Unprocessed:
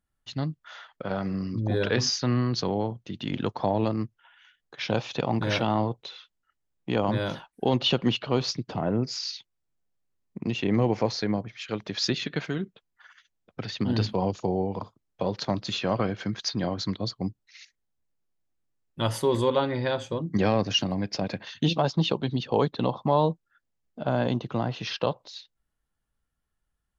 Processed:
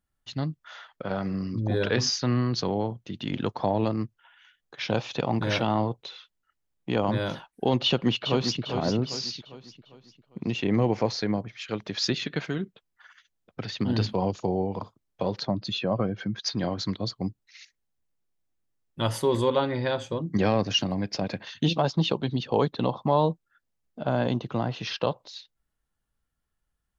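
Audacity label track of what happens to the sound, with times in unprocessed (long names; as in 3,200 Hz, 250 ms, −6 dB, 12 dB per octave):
7.850000	8.610000	delay throw 400 ms, feedback 45%, level −7 dB
15.410000	16.460000	expanding power law on the bin magnitudes exponent 1.5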